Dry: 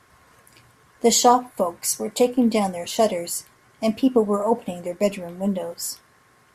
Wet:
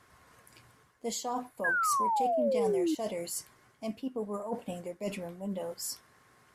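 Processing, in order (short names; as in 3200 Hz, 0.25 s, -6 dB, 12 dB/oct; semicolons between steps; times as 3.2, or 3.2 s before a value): reverse; compressor 5:1, threshold -28 dBFS, peak gain reduction 16.5 dB; reverse; painted sound fall, 1.64–2.95, 300–1700 Hz -23 dBFS; gain -5.5 dB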